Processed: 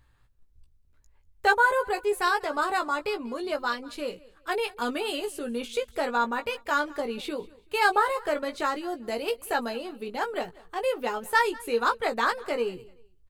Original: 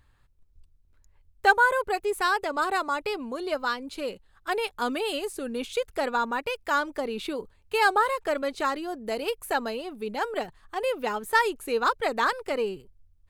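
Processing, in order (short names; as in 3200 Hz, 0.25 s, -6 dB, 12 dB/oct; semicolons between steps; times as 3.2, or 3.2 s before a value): doubler 17 ms -6 dB; on a send: feedback echo 0.191 s, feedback 28%, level -22 dB; on the sum: gain -1.5 dB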